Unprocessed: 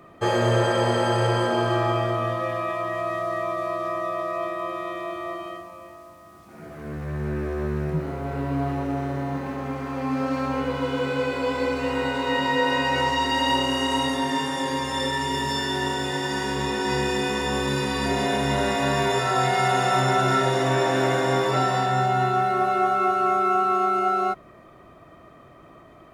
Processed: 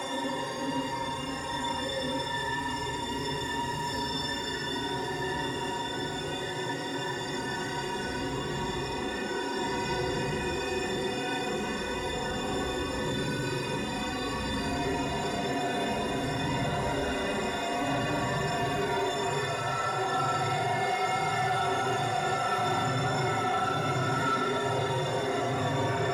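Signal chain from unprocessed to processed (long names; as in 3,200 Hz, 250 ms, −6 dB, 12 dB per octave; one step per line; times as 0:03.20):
extreme stretch with random phases 4.2×, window 0.05 s, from 0:14.57
soft clipping −14.5 dBFS, distortion −20 dB
level −6 dB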